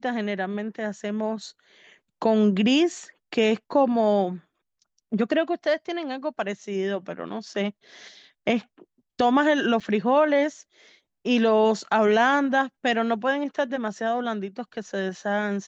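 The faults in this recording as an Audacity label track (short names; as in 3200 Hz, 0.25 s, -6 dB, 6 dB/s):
9.800000	9.810000	gap 5.7 ms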